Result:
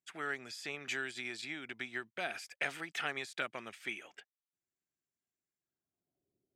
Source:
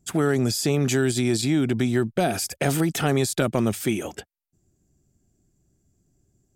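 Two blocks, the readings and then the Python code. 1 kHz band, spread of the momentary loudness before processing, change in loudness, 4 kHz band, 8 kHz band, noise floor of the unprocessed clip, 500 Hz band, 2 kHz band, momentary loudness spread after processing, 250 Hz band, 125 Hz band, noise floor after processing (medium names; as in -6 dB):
-13.5 dB, 5 LU, -16.5 dB, -12.5 dB, -22.0 dB, -71 dBFS, -22.0 dB, -5.5 dB, 5 LU, -27.5 dB, -33.5 dB, under -85 dBFS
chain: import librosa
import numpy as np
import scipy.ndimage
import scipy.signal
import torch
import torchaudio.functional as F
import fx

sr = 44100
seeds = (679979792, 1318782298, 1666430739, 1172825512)

y = fx.filter_sweep_bandpass(x, sr, from_hz=2100.0, to_hz=460.0, start_s=5.55, end_s=6.32, q=1.7)
y = fx.upward_expand(y, sr, threshold_db=-46.0, expansion=1.5)
y = y * 10.0 ** (-1.5 / 20.0)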